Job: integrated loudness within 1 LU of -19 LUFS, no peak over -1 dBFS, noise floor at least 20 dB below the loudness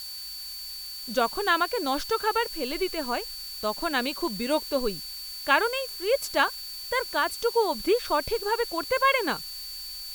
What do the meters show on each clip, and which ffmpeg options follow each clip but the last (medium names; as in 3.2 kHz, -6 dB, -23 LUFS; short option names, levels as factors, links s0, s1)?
steady tone 4.5 kHz; tone level -37 dBFS; noise floor -38 dBFS; noise floor target -47 dBFS; loudness -27.0 LUFS; peak level -7.0 dBFS; loudness target -19.0 LUFS
-> -af "bandreject=f=4500:w=30"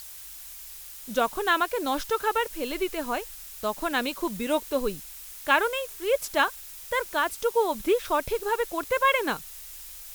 steady tone not found; noise floor -43 dBFS; noise floor target -47 dBFS
-> -af "afftdn=nr=6:nf=-43"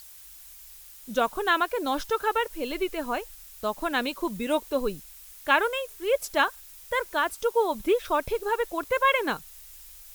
noise floor -48 dBFS; loudness -27.0 LUFS; peak level -7.0 dBFS; loudness target -19.0 LUFS
-> -af "volume=2.51,alimiter=limit=0.891:level=0:latency=1"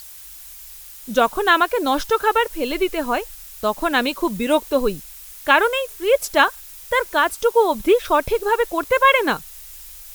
loudness -19.0 LUFS; peak level -1.0 dBFS; noise floor -40 dBFS